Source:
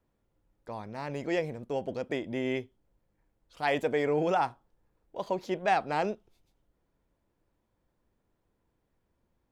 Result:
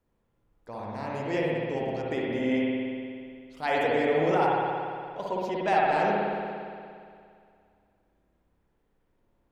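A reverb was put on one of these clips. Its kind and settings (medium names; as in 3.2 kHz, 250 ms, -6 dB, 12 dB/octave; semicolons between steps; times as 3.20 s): spring tank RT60 2.3 s, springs 58 ms, chirp 70 ms, DRR -4.5 dB; trim -1.5 dB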